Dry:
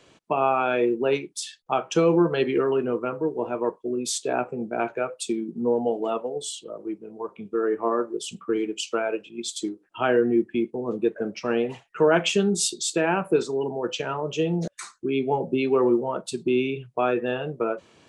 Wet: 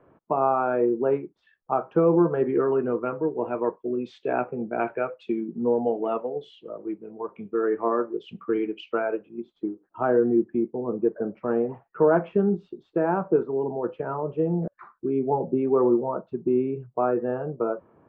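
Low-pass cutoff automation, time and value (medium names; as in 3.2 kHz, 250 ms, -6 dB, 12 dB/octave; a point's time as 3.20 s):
low-pass 24 dB/octave
2.38 s 1.4 kHz
3.19 s 2.3 kHz
8.81 s 2.3 kHz
9.42 s 1.3 kHz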